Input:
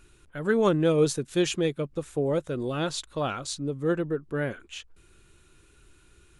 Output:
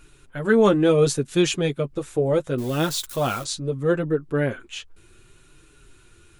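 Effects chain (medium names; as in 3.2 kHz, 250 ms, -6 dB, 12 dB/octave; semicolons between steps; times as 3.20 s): 2.58–3.44 s: zero-crossing glitches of -32.5 dBFS; flange 0.71 Hz, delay 6.4 ms, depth 3 ms, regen -21%; trim +8.5 dB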